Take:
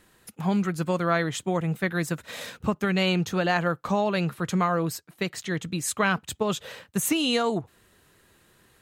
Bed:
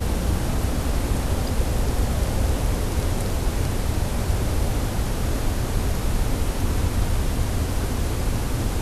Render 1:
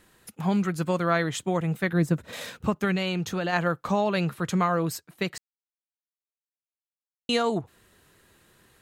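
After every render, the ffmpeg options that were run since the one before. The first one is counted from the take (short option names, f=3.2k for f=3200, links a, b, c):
-filter_complex "[0:a]asettb=1/sr,asplit=3[a][b][c];[a]atrim=end=1.934[d];[b]atrim=start=1.93:end=2.33,asetpts=PTS-STARTPTS,afade=t=in:d=0.004:c=qsin,afade=t=out:st=0.396:d=0.004:c=qsin,tiltshelf=f=720:g=7[e];[c]atrim=start=2.326[f];[d][e]acrossfade=d=0.004:c1=hsin:c2=qsin[g];[g][f]acrossfade=d=0.004:c1=qsin:c2=hsin,asplit=3[h][i][j];[h]afade=t=out:st=2.95:d=0.02[k];[i]acompressor=threshold=-25dB:ratio=3:attack=3.2:release=140:knee=1:detection=peak,afade=t=in:st=2.95:d=0.02,afade=t=out:st=3.52:d=0.02[l];[j]afade=t=in:st=3.52:d=0.02[m];[k][l][m]amix=inputs=3:normalize=0,asplit=3[n][o][p];[n]atrim=end=5.38,asetpts=PTS-STARTPTS,afade=t=out:st=5.376:d=0.004:c=hsin[q];[o]atrim=start=5.38:end=7.29,asetpts=PTS-STARTPTS,volume=0[r];[p]atrim=start=7.29,asetpts=PTS-STARTPTS,afade=t=in:d=0.004:c=hsin[s];[q][r][s]concat=n=3:v=0:a=1"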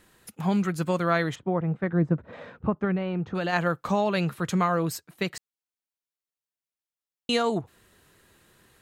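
-filter_complex "[0:a]asplit=3[a][b][c];[a]afade=t=out:st=1.34:d=0.02[d];[b]lowpass=1.3k,afade=t=in:st=1.34:d=0.02,afade=t=out:st=3.34:d=0.02[e];[c]afade=t=in:st=3.34:d=0.02[f];[d][e][f]amix=inputs=3:normalize=0"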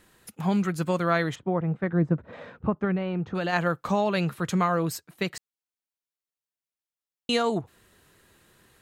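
-af anull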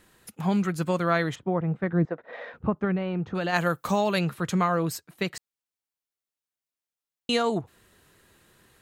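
-filter_complex "[0:a]asettb=1/sr,asplit=3[a][b][c];[a]atrim=end=2.054[d];[b]atrim=start=2.05:end=2.54,asetpts=PTS-STARTPTS,afade=t=in:d=0.004:c=qsin,afade=t=out:st=0.486:d=0.004:c=qsin,highpass=470,equalizer=f=480:t=q:w=4:g=5,equalizer=f=720:t=q:w=4:g=6,equalizer=f=1.9k:t=q:w=4:g=9,equalizer=f=3.6k:t=q:w=4:g=3,lowpass=f=5.9k:w=0.5412,lowpass=f=5.9k:w=1.3066[e];[c]atrim=start=2.536[f];[d][e]acrossfade=d=0.004:c1=hsin:c2=qsin[g];[g][f]acrossfade=d=0.004:c1=qsin:c2=hsin,asettb=1/sr,asplit=3[h][i][j];[h]atrim=end=3.544[k];[i]atrim=start=3.54:end=4.19,asetpts=PTS-STARTPTS,afade=t=in:d=0.004:c=qsin,afade=t=out:st=0.646:d=0.004:c=qsin,aemphasis=mode=production:type=50kf[l];[j]atrim=start=4.186[m];[k][l]acrossfade=d=0.004:c1=hsin:c2=qsin[n];[n][m]acrossfade=d=0.004:c1=qsin:c2=hsin"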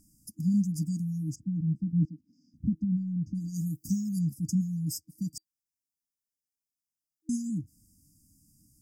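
-af "afftfilt=real='re*(1-between(b*sr/4096,320,4700))':imag='im*(1-between(b*sr/4096,320,4700))':win_size=4096:overlap=0.75,adynamicequalizer=threshold=0.00501:dfrequency=640:dqfactor=0.7:tfrequency=640:tqfactor=0.7:attack=5:release=100:ratio=0.375:range=3.5:mode=cutabove:tftype=bell"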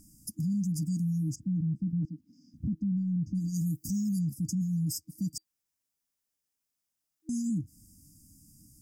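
-filter_complex "[0:a]asplit=2[a][b];[b]acompressor=threshold=-39dB:ratio=6,volume=0dB[c];[a][c]amix=inputs=2:normalize=0,alimiter=level_in=1dB:limit=-24dB:level=0:latency=1:release=12,volume=-1dB"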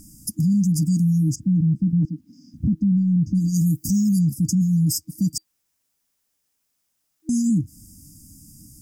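-af "volume=11dB"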